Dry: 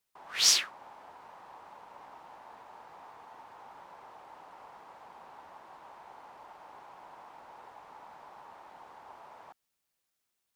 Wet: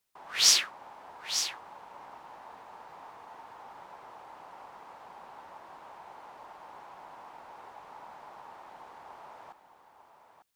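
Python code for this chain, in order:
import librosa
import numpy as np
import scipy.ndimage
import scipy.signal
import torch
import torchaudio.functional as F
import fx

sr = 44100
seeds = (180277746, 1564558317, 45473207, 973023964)

y = x + 10.0 ** (-9.5 / 20.0) * np.pad(x, (int(898 * sr / 1000.0), 0))[:len(x)]
y = y * 10.0 ** (2.0 / 20.0)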